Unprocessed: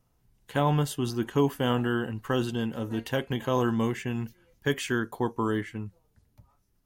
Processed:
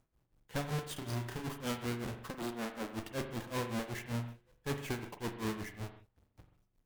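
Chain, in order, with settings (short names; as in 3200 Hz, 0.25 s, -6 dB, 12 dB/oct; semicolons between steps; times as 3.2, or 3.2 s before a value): half-waves squared off; 2.3–2.93 HPF 230 Hz 24 dB/oct; tube stage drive 28 dB, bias 0.7; tremolo 5.3 Hz, depth 93%; 0.93–1.46 doubler 32 ms -4 dB; on a send: reverb, pre-delay 42 ms, DRR 7.5 dB; on the sum: gain -3.5 dB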